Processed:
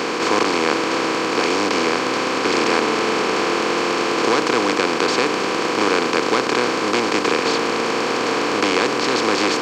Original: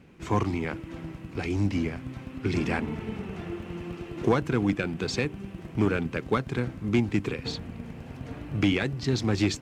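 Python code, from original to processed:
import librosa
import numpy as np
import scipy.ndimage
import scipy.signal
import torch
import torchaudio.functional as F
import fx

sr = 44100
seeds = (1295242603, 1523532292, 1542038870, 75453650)

y = fx.bin_compress(x, sr, power=0.2)
y = scipy.signal.sosfilt(scipy.signal.butter(2, 400.0, 'highpass', fs=sr, output='sos'), y)
y = y * 10.0 ** (3.0 / 20.0)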